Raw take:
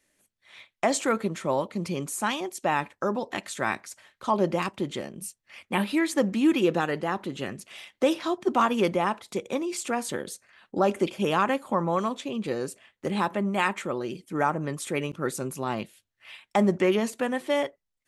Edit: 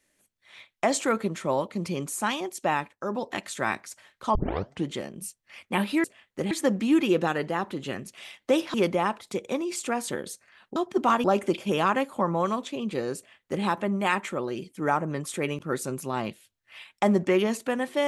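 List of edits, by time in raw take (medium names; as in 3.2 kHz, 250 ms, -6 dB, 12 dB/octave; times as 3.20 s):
2.72–3.21 s: dip -9 dB, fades 0.24 s
4.35 s: tape start 0.52 s
8.27–8.75 s: move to 10.77 s
12.70–13.17 s: copy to 6.04 s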